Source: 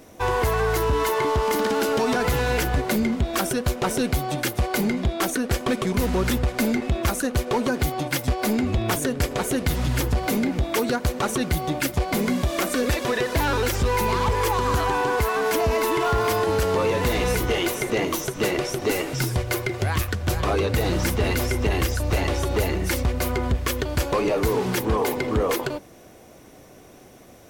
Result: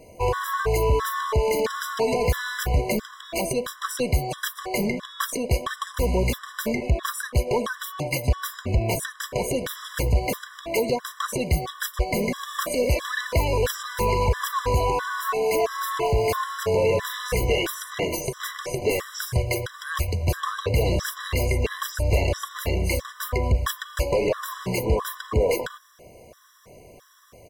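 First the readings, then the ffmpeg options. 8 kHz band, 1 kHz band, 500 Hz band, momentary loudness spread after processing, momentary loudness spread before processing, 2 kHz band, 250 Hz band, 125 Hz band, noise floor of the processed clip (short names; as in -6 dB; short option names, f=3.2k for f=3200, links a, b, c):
-2.5 dB, -2.5 dB, -1.0 dB, 6 LU, 3 LU, -2.5 dB, -6.5 dB, -1.0 dB, -48 dBFS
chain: -af "aecho=1:1:1.8:0.5,afftfilt=real='re*gt(sin(2*PI*1.5*pts/sr)*(1-2*mod(floor(b*sr/1024/1000),2)),0)':imag='im*gt(sin(2*PI*1.5*pts/sr)*(1-2*mod(floor(b*sr/1024/1000),2)),0)':win_size=1024:overlap=0.75"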